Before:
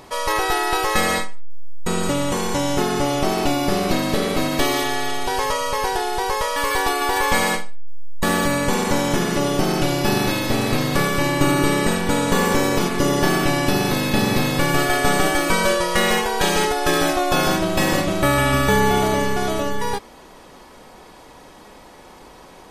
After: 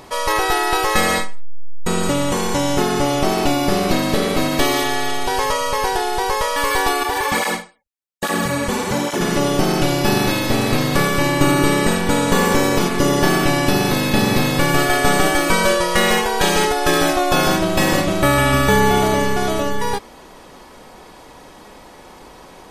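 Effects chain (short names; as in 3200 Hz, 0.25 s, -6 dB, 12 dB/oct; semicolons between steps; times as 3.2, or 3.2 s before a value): 7.03–9.21 tape flanging out of phase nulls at 1.2 Hz, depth 7.2 ms; gain +2.5 dB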